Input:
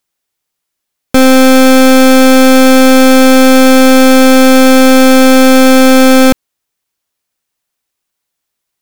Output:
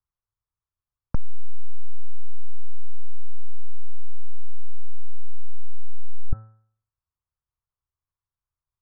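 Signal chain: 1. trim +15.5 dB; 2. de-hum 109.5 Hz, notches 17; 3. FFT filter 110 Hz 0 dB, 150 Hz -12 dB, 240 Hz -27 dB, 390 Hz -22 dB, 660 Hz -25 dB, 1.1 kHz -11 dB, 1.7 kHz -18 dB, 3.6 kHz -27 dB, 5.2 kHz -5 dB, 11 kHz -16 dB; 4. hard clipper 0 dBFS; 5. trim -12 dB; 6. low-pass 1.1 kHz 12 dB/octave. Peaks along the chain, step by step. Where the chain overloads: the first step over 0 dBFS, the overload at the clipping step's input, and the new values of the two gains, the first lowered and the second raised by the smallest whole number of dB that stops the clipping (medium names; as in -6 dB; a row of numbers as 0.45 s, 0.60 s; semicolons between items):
+12.0 dBFS, +13.5 dBFS, +8.5 dBFS, 0.0 dBFS, -12.0 dBFS, -12.0 dBFS; step 1, 8.5 dB; step 1 +6.5 dB, step 5 -3 dB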